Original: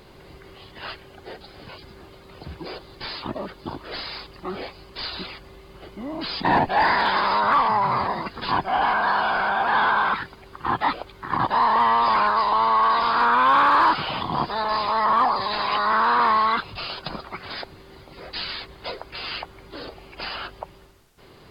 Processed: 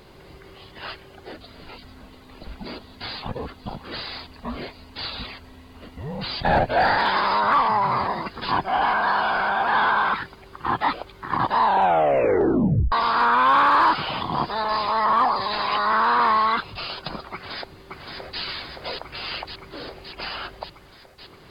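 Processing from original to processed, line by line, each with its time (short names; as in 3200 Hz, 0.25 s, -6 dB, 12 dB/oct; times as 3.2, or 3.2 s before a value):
1.32–6.98 frequency shift -130 Hz
11.58 tape stop 1.34 s
17.33–18.41 echo throw 0.57 s, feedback 75%, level -4 dB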